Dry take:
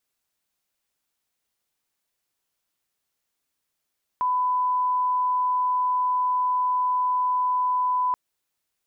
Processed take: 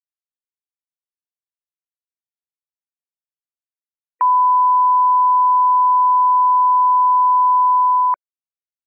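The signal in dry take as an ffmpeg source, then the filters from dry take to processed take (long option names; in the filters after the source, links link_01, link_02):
-f lavfi -i "sine=frequency=1000:duration=3.93:sample_rate=44100,volume=-1.94dB"
-af "highpass=830,afftfilt=real='re*gte(hypot(re,im),0.00447)':imag='im*gte(hypot(re,im),0.00447)':win_size=1024:overlap=0.75,dynaudnorm=framelen=210:gausssize=9:maxgain=11.5dB"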